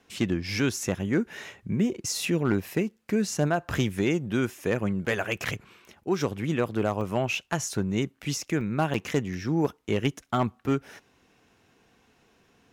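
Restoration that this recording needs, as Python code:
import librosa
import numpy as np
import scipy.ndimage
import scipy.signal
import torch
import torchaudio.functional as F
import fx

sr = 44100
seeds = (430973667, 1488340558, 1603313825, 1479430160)

y = fx.fix_declip(x, sr, threshold_db=-15.5)
y = fx.fix_interpolate(y, sr, at_s=(5.37, 7.01, 8.61, 8.94), length_ms=2.9)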